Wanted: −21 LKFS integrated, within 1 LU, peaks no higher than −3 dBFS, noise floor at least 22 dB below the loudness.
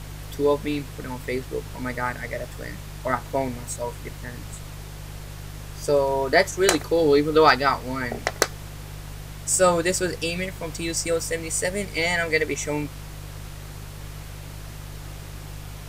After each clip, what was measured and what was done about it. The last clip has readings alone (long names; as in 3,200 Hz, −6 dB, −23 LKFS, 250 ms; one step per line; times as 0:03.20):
mains hum 50 Hz; hum harmonics up to 150 Hz; level of the hum −35 dBFS; background noise floor −38 dBFS; target noise floor −46 dBFS; integrated loudness −23.5 LKFS; sample peak −3.0 dBFS; target loudness −21.0 LKFS
→ hum removal 50 Hz, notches 3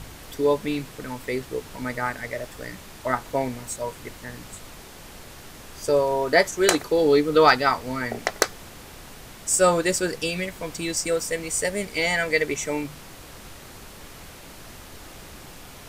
mains hum none found; background noise floor −44 dBFS; target noise floor −46 dBFS
→ noise reduction from a noise print 6 dB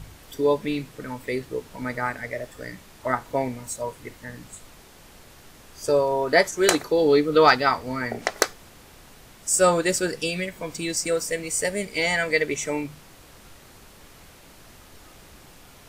background noise floor −50 dBFS; integrated loudness −23.5 LKFS; sample peak −3.0 dBFS; target loudness −21.0 LKFS
→ level +2.5 dB
brickwall limiter −3 dBFS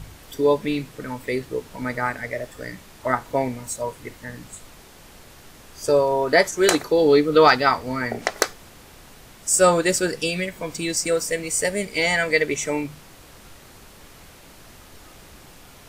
integrated loudness −21.5 LKFS; sample peak −3.0 dBFS; background noise floor −47 dBFS